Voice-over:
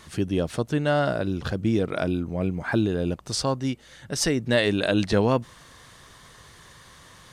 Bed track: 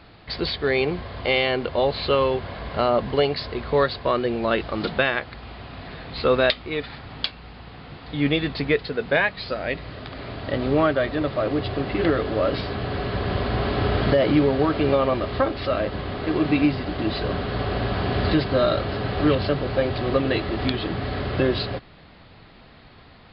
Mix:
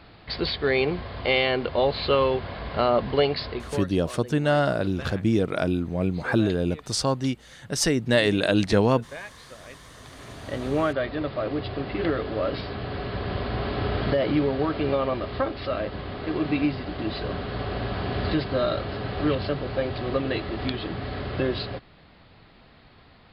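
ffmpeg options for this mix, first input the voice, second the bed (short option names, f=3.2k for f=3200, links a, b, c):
-filter_complex "[0:a]adelay=3600,volume=1dB[a];[1:a]volume=13dB,afade=t=out:st=3.48:d=0.37:silence=0.133352,afade=t=in:st=9.78:d=0.97:silence=0.199526[b];[a][b]amix=inputs=2:normalize=0"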